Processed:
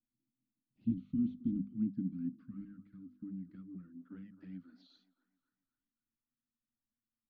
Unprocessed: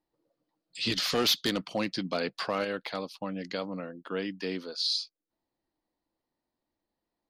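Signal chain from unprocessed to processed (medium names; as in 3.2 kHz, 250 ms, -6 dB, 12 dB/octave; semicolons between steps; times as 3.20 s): elliptic band-stop 260–1400 Hz, stop band 40 dB; hum notches 50/100/150/200/250 Hz; touch-sensitive flanger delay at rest 8.6 ms, full sweep at -29.5 dBFS; in parallel at -10 dB: hard clipper -27.5 dBFS, distortion -13 dB; on the sum: feedback echo behind a band-pass 263 ms, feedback 41%, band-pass 710 Hz, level -12 dB; low-pass sweep 270 Hz -> 950 Hz, 2.98–5.49 s; trim -5 dB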